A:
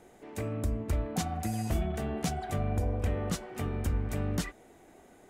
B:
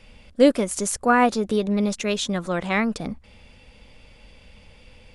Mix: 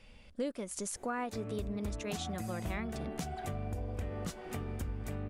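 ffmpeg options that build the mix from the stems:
ffmpeg -i stem1.wav -i stem2.wav -filter_complex "[0:a]adelay=950,volume=0dB[link_01];[1:a]volume=-8dB[link_02];[link_01][link_02]amix=inputs=2:normalize=0,acompressor=threshold=-37dB:ratio=3" out.wav

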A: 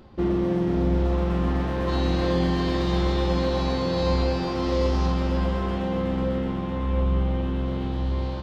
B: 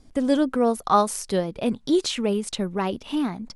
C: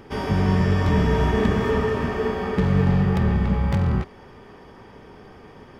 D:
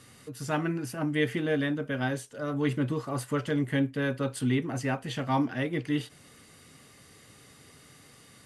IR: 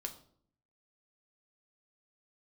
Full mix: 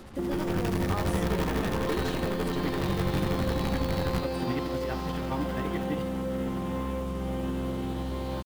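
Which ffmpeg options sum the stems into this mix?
-filter_complex "[0:a]acompressor=threshold=-26dB:ratio=2.5,volume=2dB[link_01];[1:a]volume=-10dB[link_02];[2:a]acrusher=bits=4:dc=4:mix=0:aa=0.000001,asoftclip=type=tanh:threshold=-16dB,adelay=200,volume=1dB[link_03];[3:a]volume=-3dB[link_04];[link_03][link_04]amix=inputs=2:normalize=0,tremolo=f=12:d=0.84,alimiter=limit=-22dB:level=0:latency=1:release=34,volume=0dB[link_05];[link_01][link_02]amix=inputs=2:normalize=0,acrossover=split=130|3000[link_06][link_07][link_08];[link_06]acompressor=threshold=-36dB:ratio=6[link_09];[link_09][link_07][link_08]amix=inputs=3:normalize=0,alimiter=limit=-23.5dB:level=0:latency=1,volume=0dB[link_10];[link_05][link_10]amix=inputs=2:normalize=0,equalizer=frequency=7600:width_type=o:width=1.2:gain=-4,acrusher=bits=7:mix=0:aa=0.5"

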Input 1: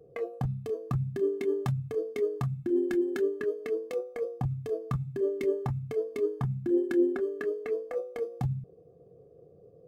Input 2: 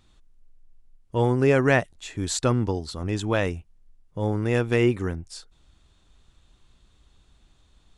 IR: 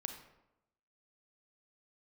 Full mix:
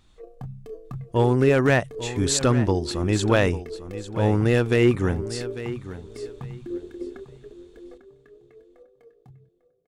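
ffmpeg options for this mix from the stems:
-filter_complex "[0:a]volume=-5.5dB,asplit=2[link_01][link_02];[link_02]volume=-14.5dB[link_03];[1:a]alimiter=limit=-11.5dB:level=0:latency=1:release=311,dynaudnorm=framelen=350:gausssize=7:maxgain=4dB,asoftclip=type=hard:threshold=-11dB,volume=1dB,asplit=3[link_04][link_05][link_06];[link_05]volume=-13.5dB[link_07];[link_06]apad=whole_len=435513[link_08];[link_01][link_08]sidechaingate=range=-31dB:threshold=-52dB:ratio=16:detection=peak[link_09];[link_03][link_07]amix=inputs=2:normalize=0,aecho=0:1:848|1696|2544:1|0.2|0.04[link_10];[link_09][link_04][link_10]amix=inputs=3:normalize=0"

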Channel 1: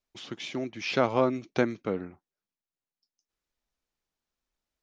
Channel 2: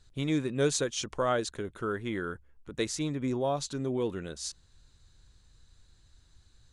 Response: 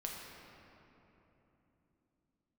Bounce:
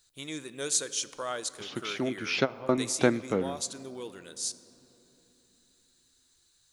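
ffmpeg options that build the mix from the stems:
-filter_complex "[0:a]adelay=1450,volume=1.5dB,asplit=2[link_01][link_02];[link_02]volume=-19dB[link_03];[1:a]aemphasis=mode=production:type=riaa,volume=-7.5dB,asplit=3[link_04][link_05][link_06];[link_05]volume=-10.5dB[link_07];[link_06]apad=whole_len=276637[link_08];[link_01][link_08]sidechaingate=range=-33dB:threshold=-58dB:ratio=16:detection=peak[link_09];[2:a]atrim=start_sample=2205[link_10];[link_03][link_07]amix=inputs=2:normalize=0[link_11];[link_11][link_10]afir=irnorm=-1:irlink=0[link_12];[link_09][link_04][link_12]amix=inputs=3:normalize=0"

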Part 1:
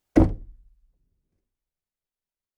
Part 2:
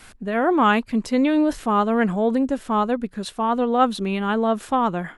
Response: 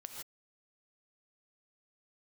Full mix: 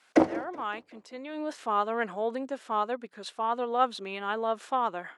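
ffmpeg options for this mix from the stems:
-filter_complex "[0:a]volume=2dB,asplit=3[link_01][link_02][link_03];[link_02]volume=-7dB[link_04];[link_03]volume=-17.5dB[link_05];[1:a]volume=-6dB,afade=type=in:start_time=1.28:duration=0.28:silence=0.334965,asplit=2[link_06][link_07];[link_07]apad=whole_len=113615[link_08];[link_01][link_08]sidechaincompress=threshold=-45dB:ratio=8:attack=16:release=390[link_09];[2:a]atrim=start_sample=2205[link_10];[link_04][link_10]afir=irnorm=-1:irlink=0[link_11];[link_05]aecho=0:1:188|376|564|752|940|1128|1316|1504:1|0.54|0.292|0.157|0.085|0.0459|0.0248|0.0134[link_12];[link_09][link_06][link_11][link_12]amix=inputs=4:normalize=0,highpass=460,lowpass=7500"

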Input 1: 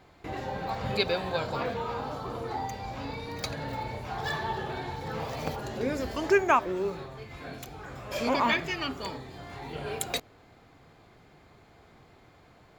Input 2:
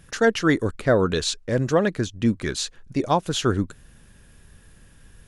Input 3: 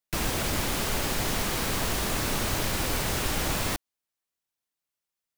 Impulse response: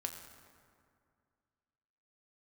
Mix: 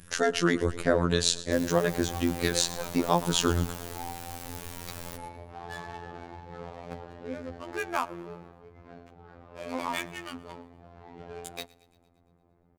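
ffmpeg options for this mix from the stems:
-filter_complex "[0:a]adynamicsmooth=sensitivity=5.5:basefreq=750,adelay=1450,volume=-5dB,asplit=3[link_01][link_02][link_03];[link_02]volume=-18dB[link_04];[link_03]volume=-22.5dB[link_05];[1:a]acompressor=threshold=-19dB:ratio=3,volume=2dB,asplit=2[link_06][link_07];[link_07]volume=-17dB[link_08];[2:a]adelay=1400,volume=-13.5dB[link_09];[3:a]atrim=start_sample=2205[link_10];[link_04][link_10]afir=irnorm=-1:irlink=0[link_11];[link_05][link_08]amix=inputs=2:normalize=0,aecho=0:1:115|230|345|460|575|690|805|920|1035:1|0.59|0.348|0.205|0.121|0.0715|0.0422|0.0249|0.0147[link_12];[link_01][link_06][link_09][link_11][link_12]amix=inputs=5:normalize=0,highshelf=frequency=7600:gain=7,afftfilt=real='hypot(re,im)*cos(PI*b)':imag='0':win_size=2048:overlap=0.75"

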